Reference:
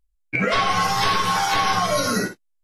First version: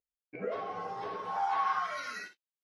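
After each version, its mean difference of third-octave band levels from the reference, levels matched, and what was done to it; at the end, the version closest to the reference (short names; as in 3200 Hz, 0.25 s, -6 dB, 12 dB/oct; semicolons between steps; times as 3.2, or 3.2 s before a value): 10.5 dB: band-pass sweep 480 Hz -> 3100 Hz, 1.14–2.34; notch 530 Hz, Q 12; gain -6.5 dB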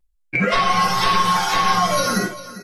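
2.0 dB: comb 5.6 ms, depth 64%; on a send: echo 0.398 s -15.5 dB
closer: second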